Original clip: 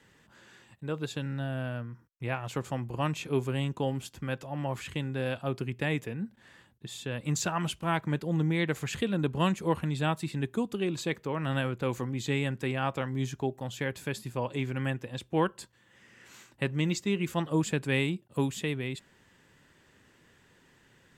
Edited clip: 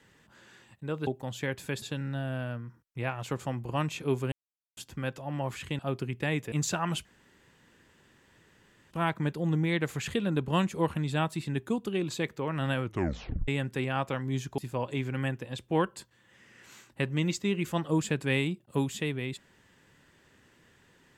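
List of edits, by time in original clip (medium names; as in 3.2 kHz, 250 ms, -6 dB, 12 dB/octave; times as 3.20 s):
3.57–4.02 s: mute
5.04–5.38 s: delete
6.11–7.25 s: delete
7.78 s: insert room tone 1.86 s
11.70 s: tape stop 0.65 s
13.45–14.20 s: move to 1.07 s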